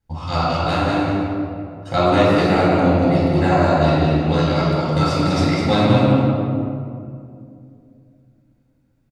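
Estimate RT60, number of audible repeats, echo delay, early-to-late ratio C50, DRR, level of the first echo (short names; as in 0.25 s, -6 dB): 2.5 s, 1, 0.2 s, -3.5 dB, -8.0 dB, -5.0 dB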